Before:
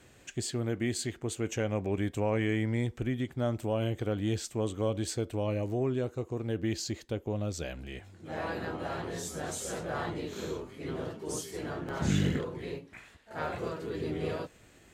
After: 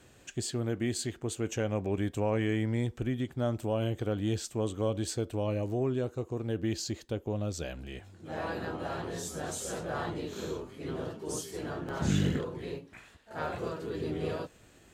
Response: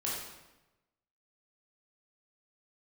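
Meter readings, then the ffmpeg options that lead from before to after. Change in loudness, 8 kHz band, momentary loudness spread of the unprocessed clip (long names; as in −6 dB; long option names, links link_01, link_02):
0.0 dB, 0.0 dB, 9 LU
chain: -af "equalizer=frequency=2100:width_type=o:width=0.33:gain=-4.5"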